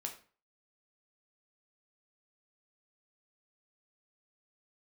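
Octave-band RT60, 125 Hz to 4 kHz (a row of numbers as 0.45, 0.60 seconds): 0.45, 0.40, 0.40, 0.40, 0.35, 0.30 seconds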